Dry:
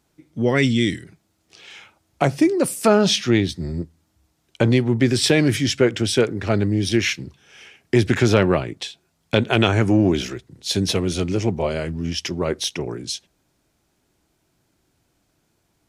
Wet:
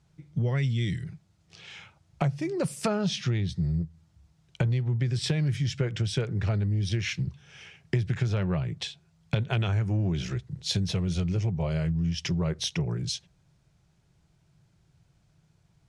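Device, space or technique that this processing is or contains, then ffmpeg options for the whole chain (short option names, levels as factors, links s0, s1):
jukebox: -af "lowpass=7600,lowshelf=f=200:t=q:w=3:g=8,acompressor=threshold=0.0891:ratio=6,volume=0.668"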